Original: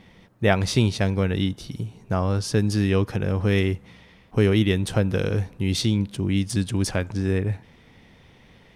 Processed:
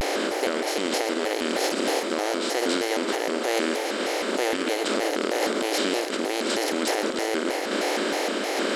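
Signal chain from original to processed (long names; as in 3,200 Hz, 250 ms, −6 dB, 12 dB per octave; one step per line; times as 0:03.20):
compressor on every frequency bin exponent 0.2
linear-phase brick-wall high-pass 240 Hz
sample-and-hold tremolo
convolution reverb RT60 0.55 s, pre-delay 88 ms, DRR 10 dB
brickwall limiter −11 dBFS, peak gain reduction 10 dB
pitch modulation by a square or saw wave square 3.2 Hz, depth 250 cents
level −3 dB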